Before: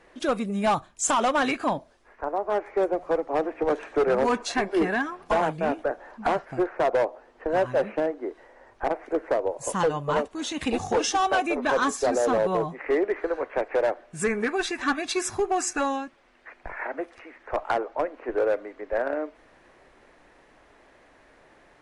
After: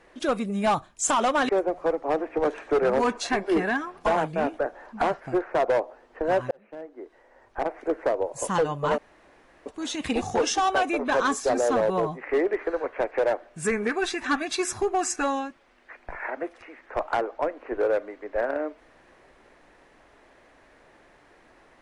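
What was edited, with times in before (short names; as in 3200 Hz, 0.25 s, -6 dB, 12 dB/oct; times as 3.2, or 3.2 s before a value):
1.49–2.74 cut
7.76–9.11 fade in
10.23 insert room tone 0.68 s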